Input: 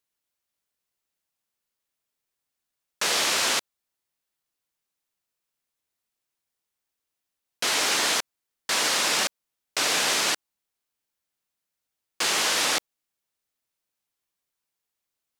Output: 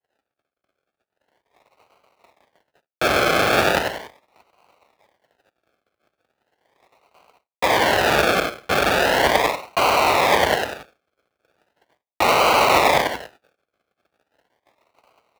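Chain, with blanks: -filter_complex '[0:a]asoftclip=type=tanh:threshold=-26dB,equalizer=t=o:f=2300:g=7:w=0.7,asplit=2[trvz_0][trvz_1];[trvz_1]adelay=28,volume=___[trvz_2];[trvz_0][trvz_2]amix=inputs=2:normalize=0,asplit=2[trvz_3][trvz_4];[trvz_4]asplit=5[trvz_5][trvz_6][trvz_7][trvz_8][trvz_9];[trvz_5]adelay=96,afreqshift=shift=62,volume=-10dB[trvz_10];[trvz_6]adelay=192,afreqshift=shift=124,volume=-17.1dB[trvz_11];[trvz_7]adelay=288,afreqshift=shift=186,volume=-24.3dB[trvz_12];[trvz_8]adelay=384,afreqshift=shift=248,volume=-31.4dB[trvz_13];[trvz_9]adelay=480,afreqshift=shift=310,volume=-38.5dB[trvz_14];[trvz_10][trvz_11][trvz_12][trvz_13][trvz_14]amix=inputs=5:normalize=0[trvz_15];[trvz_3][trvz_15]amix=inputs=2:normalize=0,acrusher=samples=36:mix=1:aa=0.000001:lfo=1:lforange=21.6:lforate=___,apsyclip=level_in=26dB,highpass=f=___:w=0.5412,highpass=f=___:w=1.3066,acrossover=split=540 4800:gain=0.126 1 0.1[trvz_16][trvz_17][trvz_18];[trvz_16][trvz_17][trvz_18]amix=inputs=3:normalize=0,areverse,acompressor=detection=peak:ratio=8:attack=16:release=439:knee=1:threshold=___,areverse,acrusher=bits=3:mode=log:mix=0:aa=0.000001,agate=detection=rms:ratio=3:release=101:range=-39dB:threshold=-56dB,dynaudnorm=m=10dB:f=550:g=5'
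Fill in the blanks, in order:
-12dB, 0.38, 47, 47, -24dB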